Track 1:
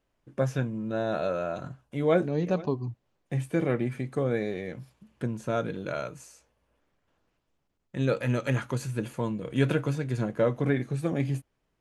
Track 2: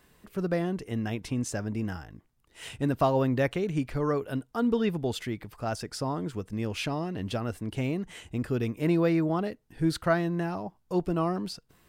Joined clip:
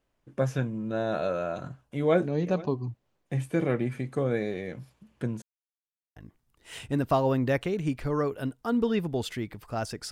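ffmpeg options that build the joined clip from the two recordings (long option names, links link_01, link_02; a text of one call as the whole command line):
ffmpeg -i cue0.wav -i cue1.wav -filter_complex "[0:a]apad=whole_dur=10.11,atrim=end=10.11,asplit=2[link_01][link_02];[link_01]atrim=end=5.42,asetpts=PTS-STARTPTS,afade=type=out:start_time=5.416:duration=0.004:curve=hsin[link_03];[link_02]atrim=start=5.42:end=6.16,asetpts=PTS-STARTPTS,volume=0[link_04];[1:a]atrim=start=2.06:end=6.01,asetpts=PTS-STARTPTS,afade=type=in:duration=0.004:curve=hsin[link_05];[link_03][link_04][link_05]concat=n=3:v=0:a=1" out.wav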